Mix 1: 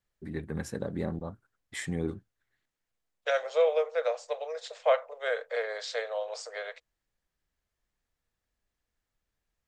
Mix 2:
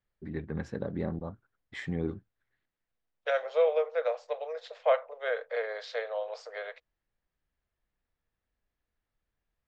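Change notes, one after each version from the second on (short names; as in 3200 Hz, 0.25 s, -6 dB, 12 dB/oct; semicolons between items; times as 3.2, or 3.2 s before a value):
master: add air absorption 190 m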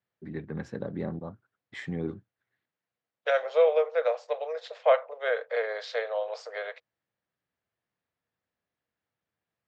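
first voice: add HPF 98 Hz 24 dB/oct; second voice +3.5 dB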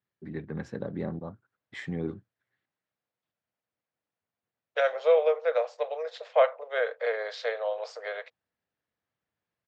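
second voice: entry +1.50 s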